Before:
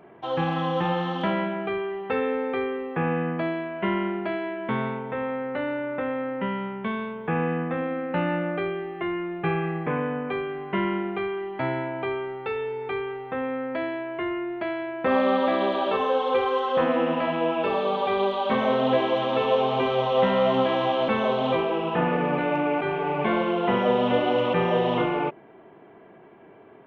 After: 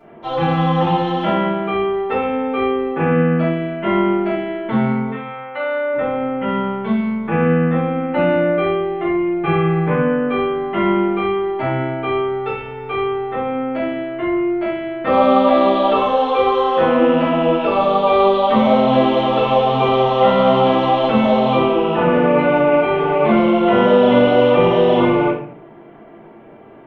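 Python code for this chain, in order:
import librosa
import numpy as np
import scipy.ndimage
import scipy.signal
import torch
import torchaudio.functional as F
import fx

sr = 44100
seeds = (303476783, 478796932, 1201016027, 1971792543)

y = fx.highpass(x, sr, hz=fx.line((5.09, 1400.0), (5.93, 490.0)), slope=12, at=(5.09, 5.93), fade=0.02)
y = fx.room_shoebox(y, sr, seeds[0], volume_m3=68.0, walls='mixed', distance_m=2.5)
y = y * librosa.db_to_amplitude(-3.5)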